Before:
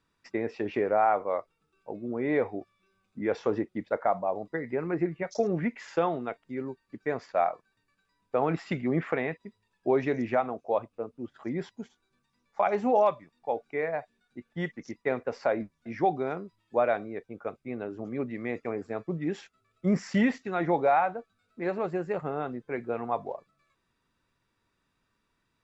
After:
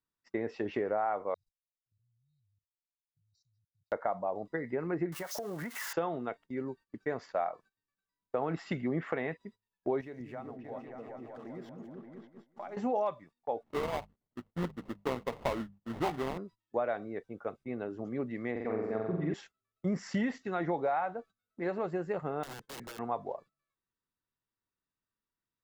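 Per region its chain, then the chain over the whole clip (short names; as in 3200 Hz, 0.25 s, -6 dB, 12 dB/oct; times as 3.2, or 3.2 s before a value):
1.34–3.92 brick-wall FIR band-stop 150–3700 Hz + level quantiser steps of 19 dB
5.12–5.93 switching spikes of -30.5 dBFS + bell 1100 Hz +13 dB 1.7 oct + compressor 8:1, threshold -33 dBFS
10.01–12.77 backlash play -52.5 dBFS + compressor 2:1, threshold -50 dBFS + repeats that get brighter 0.193 s, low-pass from 200 Hz, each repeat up 2 oct, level 0 dB
13.63–16.38 sample-rate reducer 1600 Hz, jitter 20% + tone controls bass +3 dB, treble -13 dB + notches 50/100/150/200 Hz
18.51–19.34 air absorption 150 m + flutter echo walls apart 7.8 m, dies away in 1 s + mismatched tape noise reduction encoder only
22.43–22.99 compressor 12:1, threshold -34 dBFS + wrapped overs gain 37 dB
whole clip: gate -49 dBFS, range -17 dB; notch 2400 Hz, Q 11; compressor 3:1, threshold -27 dBFS; gain -2 dB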